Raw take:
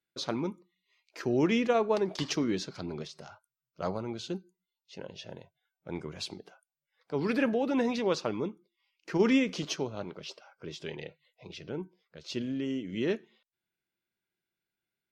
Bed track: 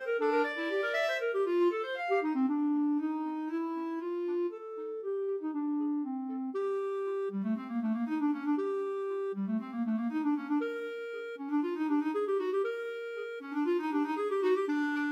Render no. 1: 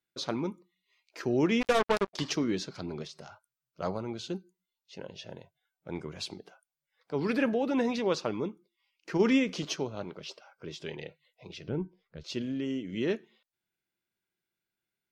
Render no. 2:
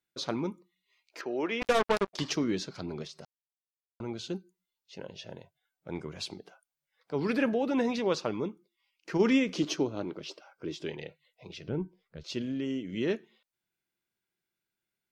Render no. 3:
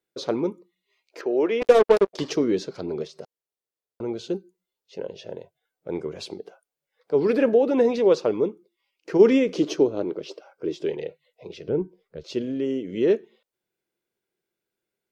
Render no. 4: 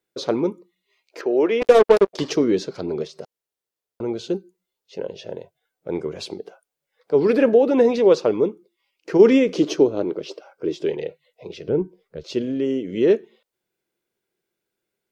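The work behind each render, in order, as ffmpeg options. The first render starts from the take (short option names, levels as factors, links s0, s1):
-filter_complex "[0:a]asplit=3[s0][s1][s2];[s0]afade=t=out:st=1.6:d=0.02[s3];[s1]acrusher=bits=3:mix=0:aa=0.5,afade=t=in:st=1.6:d=0.02,afade=t=out:st=2.13:d=0.02[s4];[s2]afade=t=in:st=2.13:d=0.02[s5];[s3][s4][s5]amix=inputs=3:normalize=0,asettb=1/sr,asplit=3[s6][s7][s8];[s6]atrim=end=11.684[s9];[s7]atrim=start=11.68:end=12.24,asetpts=PTS-STARTPTS,afade=t=in:d=0.004:c=qsin,afade=t=out:st=0.556:d=0.004:c=qsin,aemphasis=mode=reproduction:type=bsi[s10];[s8]atrim=start=12.236[s11];[s9][s10]acrossfade=d=0.004:c1=hsin:c2=qsin[s12];[s12][s11]acrossfade=d=0.004:c1=qsin:c2=hsin"
-filter_complex "[0:a]asettb=1/sr,asplit=3[s0][s1][s2];[s0]atrim=end=1.214[s3];[s1]atrim=start=1.21:end=1.62,asetpts=PTS-STARTPTS,afade=t=in:d=0.004:c=qsin,afade=t=out:st=0.406:d=0.004:c=qsin,highpass=450,lowpass=3400[s4];[s2]atrim=start=1.616[s5];[s3][s4]acrossfade=d=0.004:c1=hsin:c2=qsin[s6];[s6][s5]acrossfade=d=0.004:c1=qsin:c2=hsin,asettb=1/sr,asplit=3[s7][s8][s9];[s7]atrim=end=9.554[s10];[s8]atrim=start=9.55:end=10.91,asetpts=PTS-STARTPTS,afade=t=in:d=0.004:c=qsin,afade=t=out:st=1.356:d=0.004:c=qsin,equalizer=f=310:t=o:w=0.49:g=11[s11];[s9]atrim=start=10.906[s12];[s10][s11]acrossfade=d=0.004:c1=hsin:c2=qsin[s13];[s13][s12]acrossfade=d=0.004:c1=qsin:c2=hsin,asplit=3[s14][s15][s16];[s14]atrim=end=3.25,asetpts=PTS-STARTPTS,afade=t=out:st=3.246:d=0.004:c=hsin[s17];[s15]atrim=start=3.25:end=4,asetpts=PTS-STARTPTS,volume=0[s18];[s16]atrim=start=4,asetpts=PTS-STARTPTS,afade=t=in:d=0.004:c=hsin[s19];[s17][s18][s19]concat=n=3:v=0:a=1"
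-af "equalizer=f=450:t=o:w=1.1:g=13.5"
-af "volume=1.5,alimiter=limit=0.794:level=0:latency=1"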